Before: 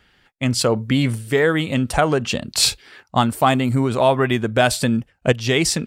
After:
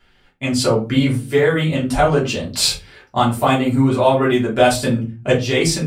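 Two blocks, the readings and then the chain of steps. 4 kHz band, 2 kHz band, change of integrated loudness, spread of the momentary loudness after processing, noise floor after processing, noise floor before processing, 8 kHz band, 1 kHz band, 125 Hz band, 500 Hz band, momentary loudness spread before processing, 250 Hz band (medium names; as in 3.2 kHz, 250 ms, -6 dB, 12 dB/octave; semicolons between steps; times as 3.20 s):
0.0 dB, 0.0 dB, +1.5 dB, 7 LU, -55 dBFS, -62 dBFS, -0.5 dB, +1.5 dB, +1.5 dB, +2.5 dB, 5 LU, +2.5 dB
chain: simulated room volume 120 m³, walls furnished, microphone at 3.1 m; trim -6.5 dB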